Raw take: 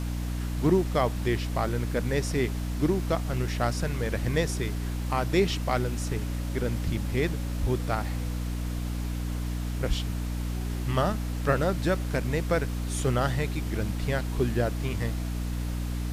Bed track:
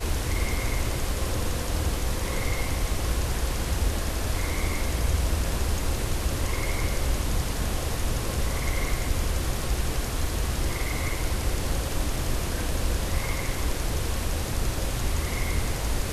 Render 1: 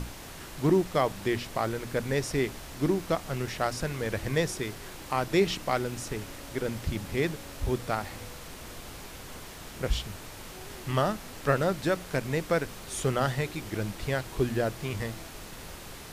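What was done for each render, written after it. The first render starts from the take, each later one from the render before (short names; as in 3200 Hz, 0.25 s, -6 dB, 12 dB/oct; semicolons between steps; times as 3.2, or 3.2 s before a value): notches 60/120/180/240/300 Hz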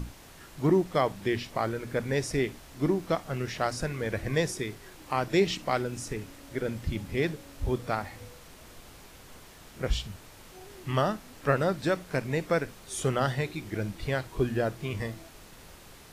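noise print and reduce 7 dB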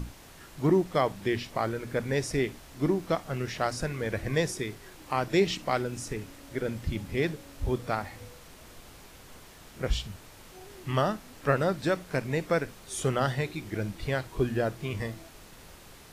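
nothing audible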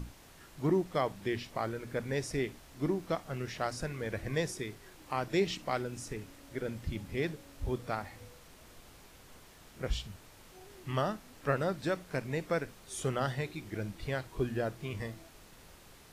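gain -5.5 dB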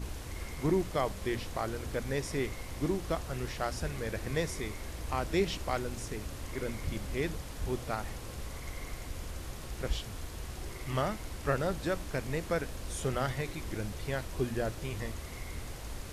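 add bed track -14.5 dB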